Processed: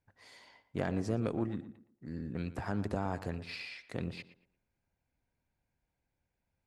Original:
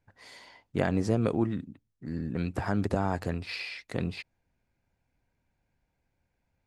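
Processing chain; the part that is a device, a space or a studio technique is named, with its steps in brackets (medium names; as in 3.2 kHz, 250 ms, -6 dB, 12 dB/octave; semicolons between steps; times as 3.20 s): rockabilly slapback (valve stage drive 16 dB, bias 0.35; tape echo 116 ms, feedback 33%, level -12 dB, low-pass 2.1 kHz); trim -5.5 dB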